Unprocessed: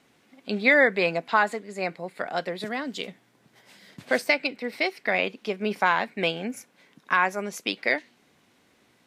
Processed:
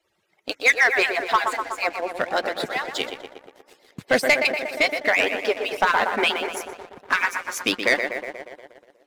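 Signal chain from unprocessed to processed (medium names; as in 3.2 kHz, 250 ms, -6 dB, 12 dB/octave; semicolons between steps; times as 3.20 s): harmonic-percussive separation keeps percussive; tape echo 121 ms, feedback 81%, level -7 dB, low-pass 2.2 kHz; waveshaping leveller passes 2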